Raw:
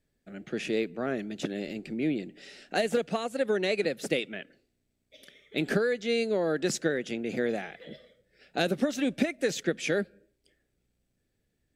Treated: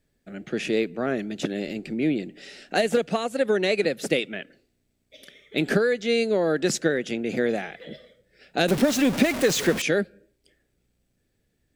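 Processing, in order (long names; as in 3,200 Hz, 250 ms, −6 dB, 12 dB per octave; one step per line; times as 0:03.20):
0:08.68–0:09.82: converter with a step at zero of −29.5 dBFS
level +5 dB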